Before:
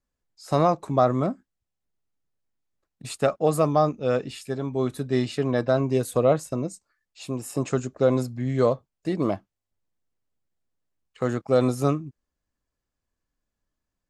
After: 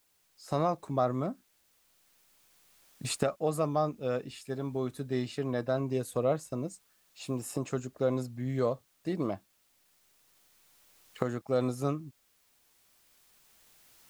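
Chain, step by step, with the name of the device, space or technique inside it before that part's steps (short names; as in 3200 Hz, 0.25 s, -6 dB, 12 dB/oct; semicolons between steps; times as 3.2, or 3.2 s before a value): cheap recorder with automatic gain (white noise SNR 37 dB; recorder AGC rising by 5.5 dB/s); gain -8.5 dB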